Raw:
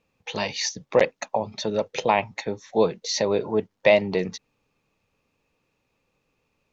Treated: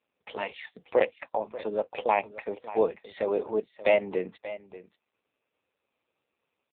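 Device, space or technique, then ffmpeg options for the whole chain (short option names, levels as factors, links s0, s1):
satellite phone: -af "highpass=310,lowpass=3000,aecho=1:1:584:0.168,volume=0.75" -ar 8000 -c:a libopencore_amrnb -b:a 5900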